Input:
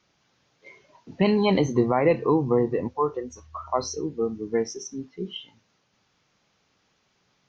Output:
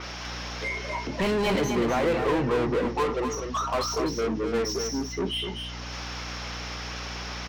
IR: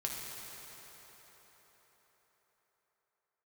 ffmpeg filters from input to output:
-filter_complex "[0:a]equalizer=f=5.4k:w=7.4:g=12.5,acompressor=mode=upward:threshold=-36dB:ratio=2.5,asplit=2[a][b];[b]highpass=f=720:p=1,volume=30dB,asoftclip=type=tanh:threshold=-15.5dB[c];[a][c]amix=inputs=2:normalize=0,lowpass=f=5.1k:p=1,volume=-6dB,aeval=exprs='val(0)+0.0158*(sin(2*PI*60*n/s)+sin(2*PI*2*60*n/s)/2+sin(2*PI*3*60*n/s)/3+sin(2*PI*4*60*n/s)/4+sin(2*PI*5*60*n/s)/5)':c=same,aecho=1:1:250:0.473,adynamicequalizer=threshold=0.0126:dfrequency=4000:dqfactor=0.7:tfrequency=4000:tqfactor=0.7:attack=5:release=100:ratio=0.375:range=3:mode=cutabove:tftype=highshelf,volume=-5dB"

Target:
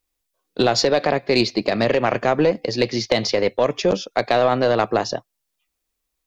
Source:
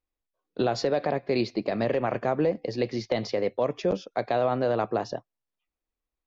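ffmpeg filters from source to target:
-af "aeval=exprs='0.266*(cos(1*acos(clip(val(0)/0.266,-1,1)))-cos(1*PI/2))+0.0237*(cos(2*acos(clip(val(0)/0.266,-1,1)))-cos(2*PI/2))+0.00473*(cos(7*acos(clip(val(0)/0.266,-1,1)))-cos(7*PI/2))':c=same,highshelf=f=2.7k:g=11.5,volume=7dB"

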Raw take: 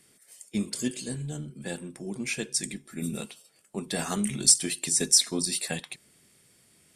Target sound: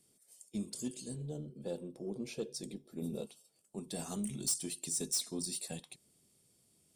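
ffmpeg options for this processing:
-filter_complex "[0:a]asettb=1/sr,asplit=3[a][b][c];[a]atrim=end=1.164[d];[b]atrim=start=1.16:end=3.27,asetpts=PTS-STARTPTS,afade=t=in:d=0.004:c=qsin,afade=t=out:st=2.106:d=0.004:c=qsin,equalizer=f=500:t=o:w=1:g=11,equalizer=f=2k:t=o:w=1:g=-4,equalizer=f=4k:t=o:w=1:g=4,equalizer=f=8k:t=o:w=1:g=-11[e];[c]atrim=start=3.266[f];[d][e]acrossfade=d=0.004:c1=hsin:c2=qsin[g];[g][f]acrossfade=d=0.004:c1=qsin:c2=hsin,asoftclip=type=tanh:threshold=-19dB,equalizer=f=1.8k:w=1.1:g=-13.5,volume=-8dB"

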